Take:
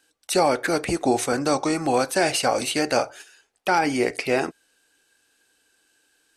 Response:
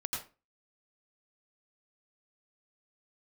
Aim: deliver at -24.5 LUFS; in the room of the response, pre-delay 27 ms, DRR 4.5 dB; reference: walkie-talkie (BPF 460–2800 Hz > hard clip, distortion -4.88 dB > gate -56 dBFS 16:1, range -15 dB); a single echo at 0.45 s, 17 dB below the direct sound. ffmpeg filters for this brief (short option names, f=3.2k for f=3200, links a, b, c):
-filter_complex "[0:a]aecho=1:1:450:0.141,asplit=2[a][b];[1:a]atrim=start_sample=2205,adelay=27[c];[b][c]afir=irnorm=-1:irlink=0,volume=-7dB[d];[a][d]amix=inputs=2:normalize=0,highpass=460,lowpass=2.8k,asoftclip=type=hard:threshold=-27dB,agate=range=-15dB:threshold=-56dB:ratio=16,volume=5.5dB"